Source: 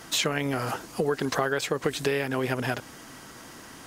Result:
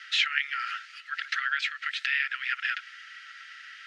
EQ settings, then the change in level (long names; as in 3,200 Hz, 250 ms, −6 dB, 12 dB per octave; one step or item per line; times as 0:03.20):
Chebyshev high-pass with heavy ripple 1,300 Hz, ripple 6 dB
low-pass with resonance 2,700 Hz, resonance Q 2.4
+4.0 dB